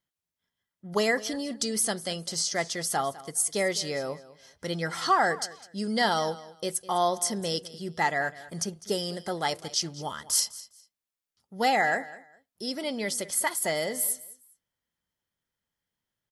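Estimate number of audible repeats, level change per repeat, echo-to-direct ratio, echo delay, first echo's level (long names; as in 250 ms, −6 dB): 2, −13.5 dB, −18.0 dB, 204 ms, −18.0 dB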